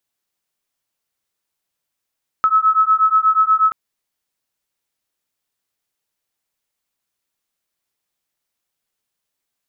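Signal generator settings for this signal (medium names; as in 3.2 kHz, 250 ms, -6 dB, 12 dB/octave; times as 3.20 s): beating tones 1.29 kHz, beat 8.3 Hz, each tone -14.5 dBFS 1.28 s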